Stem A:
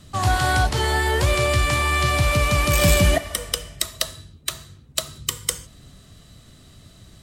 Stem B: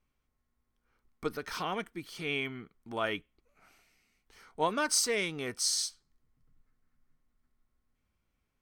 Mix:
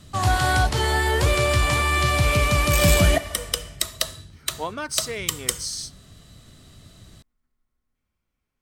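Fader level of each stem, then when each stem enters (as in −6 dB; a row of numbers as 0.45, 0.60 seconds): −0.5, −0.5 decibels; 0.00, 0.00 seconds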